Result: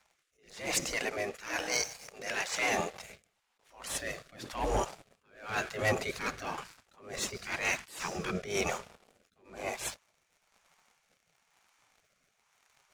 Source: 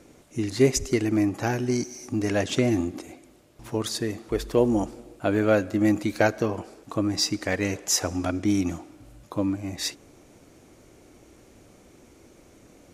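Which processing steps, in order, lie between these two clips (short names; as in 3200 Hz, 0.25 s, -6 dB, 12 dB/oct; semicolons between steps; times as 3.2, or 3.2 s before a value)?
LPF 4000 Hz 6 dB/oct; spectral gate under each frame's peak -15 dB weak; 0.96–3.03 low shelf 290 Hz -10.5 dB; sample leveller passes 3; rotary speaker horn 1 Hz; attack slew limiter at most 120 dB/s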